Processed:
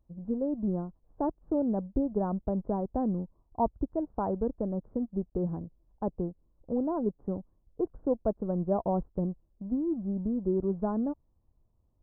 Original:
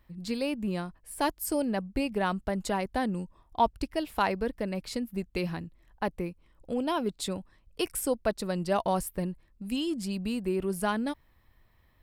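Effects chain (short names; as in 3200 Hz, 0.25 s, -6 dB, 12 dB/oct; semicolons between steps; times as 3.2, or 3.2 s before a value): G.711 law mismatch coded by A; Gaussian blur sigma 11 samples; gain +3.5 dB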